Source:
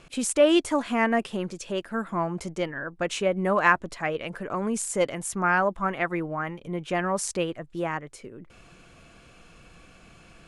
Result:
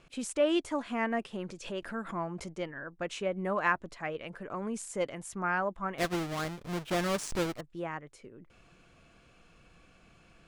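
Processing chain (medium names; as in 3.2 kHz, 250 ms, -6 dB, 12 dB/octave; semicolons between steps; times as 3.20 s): 5.98–7.61 s: square wave that keeps the level; treble shelf 10 kHz -9.5 dB; 1.49–2.53 s: swell ahead of each attack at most 99 dB/s; trim -8 dB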